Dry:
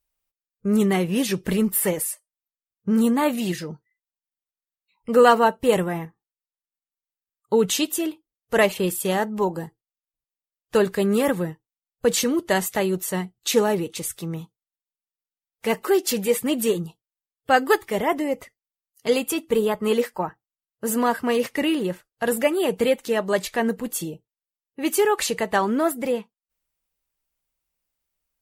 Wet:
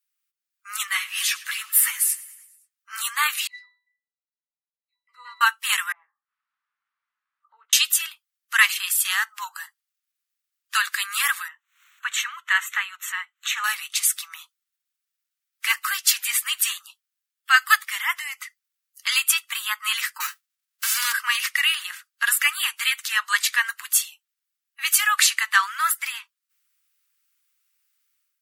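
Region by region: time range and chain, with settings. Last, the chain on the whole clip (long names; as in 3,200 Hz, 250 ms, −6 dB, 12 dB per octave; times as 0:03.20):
0:00.87–0:02.93: linear-phase brick-wall high-pass 190 Hz + repeating echo 104 ms, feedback 58%, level −19 dB + string-ensemble chorus
0:03.47–0:05.41: high-shelf EQ 3,300 Hz +8 dB + resonances in every octave B, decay 0.4 s
0:05.92–0:07.73: double-tracking delay 17 ms −6 dB + upward compression, threshold −22 dBFS + flat-topped band-pass 350 Hz, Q 1.2
0:11.48–0:13.64: moving average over 9 samples + parametric band 300 Hz −13 dB 0.74 octaves + upward compression, threshold −33 dBFS
0:20.20–0:21.11: spectral envelope flattened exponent 0.3 + downward compressor 3 to 1, threshold −27 dBFS
whole clip: Butterworth high-pass 1,200 Hz 48 dB per octave; automatic gain control gain up to 10 dB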